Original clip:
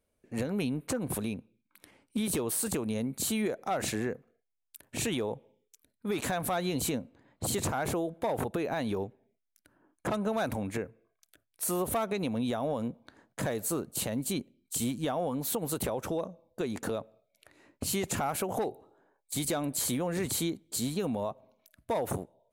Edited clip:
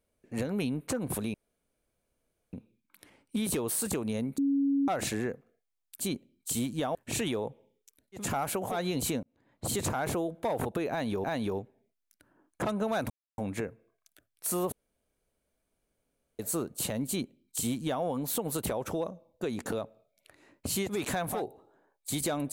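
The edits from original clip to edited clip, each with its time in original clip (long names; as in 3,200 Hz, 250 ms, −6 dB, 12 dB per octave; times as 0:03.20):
0:01.34: splice in room tone 1.19 s
0:03.19–0:03.69: beep over 278 Hz −23.5 dBFS
0:06.06–0:06.51: swap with 0:18.07–0:18.59, crossfade 0.16 s
0:07.02–0:07.66: fade in equal-power
0:08.69–0:09.03: repeat, 2 plays
0:10.55: splice in silence 0.28 s
0:11.89–0:13.56: fill with room tone
0:14.25–0:15.20: duplicate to 0:04.81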